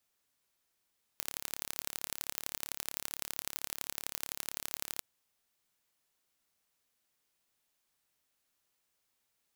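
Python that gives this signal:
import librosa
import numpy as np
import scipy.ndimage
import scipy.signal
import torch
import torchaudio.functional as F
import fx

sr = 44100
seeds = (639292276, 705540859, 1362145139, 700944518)

y = fx.impulse_train(sr, length_s=3.82, per_s=35.6, accent_every=3, level_db=-7.5)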